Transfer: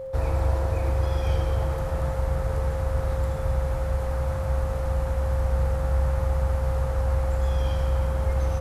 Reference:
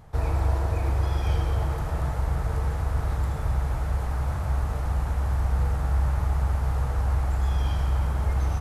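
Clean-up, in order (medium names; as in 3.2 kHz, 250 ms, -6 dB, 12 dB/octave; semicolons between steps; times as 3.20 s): de-click; band-stop 530 Hz, Q 30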